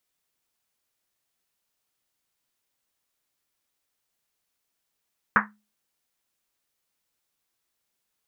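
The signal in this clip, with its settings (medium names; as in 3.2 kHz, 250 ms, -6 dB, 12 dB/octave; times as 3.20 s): Risset drum, pitch 210 Hz, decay 0.33 s, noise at 1.4 kHz, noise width 980 Hz, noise 75%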